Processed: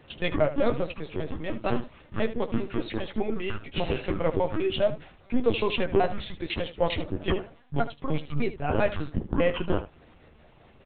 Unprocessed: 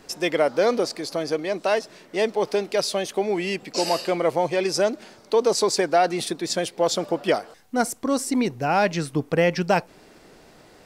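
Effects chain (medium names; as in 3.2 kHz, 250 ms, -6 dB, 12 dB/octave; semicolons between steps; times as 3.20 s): pitch shift switched off and on -10 st, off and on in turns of 100 ms; LPC vocoder at 8 kHz pitch kept; early reflections 13 ms -9.5 dB, 76 ms -13.5 dB; trim -4 dB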